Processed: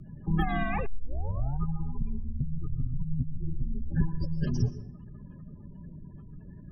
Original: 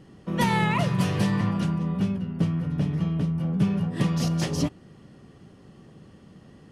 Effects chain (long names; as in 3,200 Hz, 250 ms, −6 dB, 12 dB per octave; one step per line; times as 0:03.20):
gate on every frequency bin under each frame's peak −20 dB strong
0:03.13–0:03.53: parametric band 410 Hz +3 dB 1.3 octaves
downward compressor 4 to 1, threshold −28 dBFS, peak gain reduction 9.5 dB
hollow resonant body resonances 330/1,400 Hz, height 14 dB, ringing for 40 ms
frequency shifter −170 Hz
convolution reverb RT60 0.70 s, pre-delay 110 ms, DRR 13 dB
0:00.86: tape start 0.75 s